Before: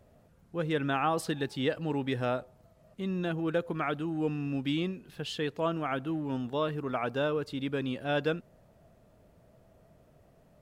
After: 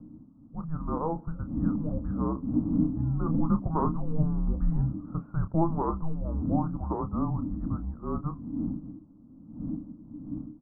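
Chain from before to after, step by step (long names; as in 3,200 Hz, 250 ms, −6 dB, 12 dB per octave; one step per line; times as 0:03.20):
wind on the microphone 130 Hz −35 dBFS
source passing by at 0:04.72, 5 m/s, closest 7.4 metres
Butterworth low-pass 1,600 Hz 72 dB per octave
frequency shifter −320 Hz
double-tracking delay 30 ms −10 dB
level +6 dB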